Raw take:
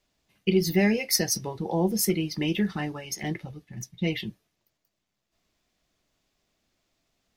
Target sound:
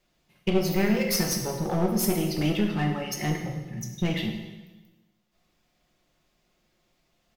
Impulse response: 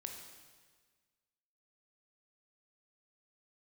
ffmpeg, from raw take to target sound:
-filter_complex "[0:a]equalizer=f=6900:t=o:w=1.9:g=-4.5,aecho=1:1:5.6:0.42,asplit=2[s0][s1];[s1]acompressor=threshold=0.0447:ratio=6,volume=1.41[s2];[s0][s2]amix=inputs=2:normalize=0,aeval=exprs='clip(val(0),-1,0.0668)':c=same[s3];[1:a]atrim=start_sample=2205,asetrate=57330,aresample=44100[s4];[s3][s4]afir=irnorm=-1:irlink=0,volume=1.33"

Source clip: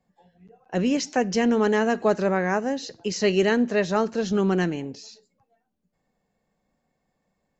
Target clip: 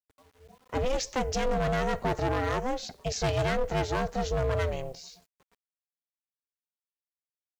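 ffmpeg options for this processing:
-af "acrusher=bits=9:mix=0:aa=0.000001,volume=11.2,asoftclip=hard,volume=0.0891,aeval=exprs='val(0)*sin(2*PI*260*n/s)':c=same"

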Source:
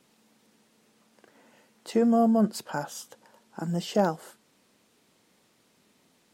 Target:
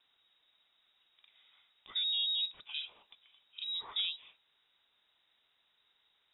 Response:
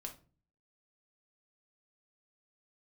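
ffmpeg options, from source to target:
-filter_complex "[0:a]lowpass=f=3400:t=q:w=0.5098,lowpass=f=3400:t=q:w=0.6013,lowpass=f=3400:t=q:w=0.9,lowpass=f=3400:t=q:w=2.563,afreqshift=-4000,acrossover=split=3100[s0][s1];[s1]acompressor=threshold=0.0282:ratio=4:attack=1:release=60[s2];[s0][s2]amix=inputs=2:normalize=0,volume=0.422"

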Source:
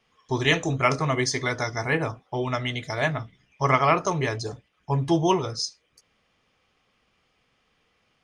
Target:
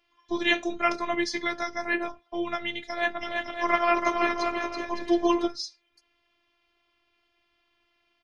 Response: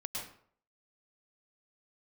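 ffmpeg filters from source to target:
-filter_complex "[0:a]highshelf=f=5700:t=q:w=1.5:g=-7.5,asplit=3[s0][s1][s2];[s0]afade=t=out:st=3.2:d=0.02[s3];[s1]aecho=1:1:330|561|722.7|835.9|915.1:0.631|0.398|0.251|0.158|0.1,afade=t=in:st=3.2:d=0.02,afade=t=out:st=5.46:d=0.02[s4];[s2]afade=t=in:st=5.46:d=0.02[s5];[s3][s4][s5]amix=inputs=3:normalize=0,afftfilt=real='hypot(re,im)*cos(PI*b)':imag='0':win_size=512:overlap=0.75"

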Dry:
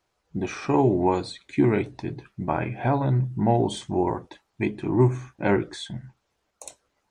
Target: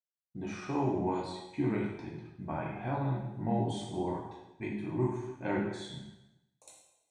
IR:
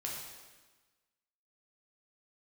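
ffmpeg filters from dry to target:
-filter_complex "[0:a]agate=range=0.0224:threshold=0.0112:ratio=3:detection=peak[s0];[1:a]atrim=start_sample=2205,asetrate=61740,aresample=44100[s1];[s0][s1]afir=irnorm=-1:irlink=0,volume=0.422"

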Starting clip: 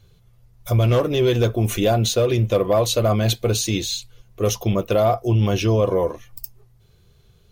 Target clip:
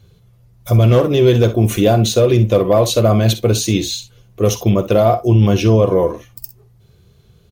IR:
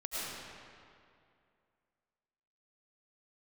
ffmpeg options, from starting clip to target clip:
-af "highpass=f=120:p=1,lowshelf=f=400:g=8,aecho=1:1:49|63:0.188|0.178,volume=1.33"

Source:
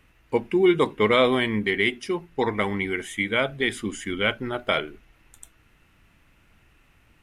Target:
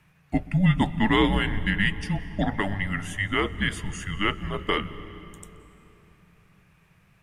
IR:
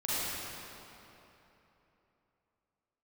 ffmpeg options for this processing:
-filter_complex "[0:a]afreqshift=-200,asplit=2[s0][s1];[1:a]atrim=start_sample=2205,lowshelf=f=160:g=12,adelay=127[s2];[s1][s2]afir=irnorm=-1:irlink=0,volume=0.0631[s3];[s0][s3]amix=inputs=2:normalize=0,volume=0.841"

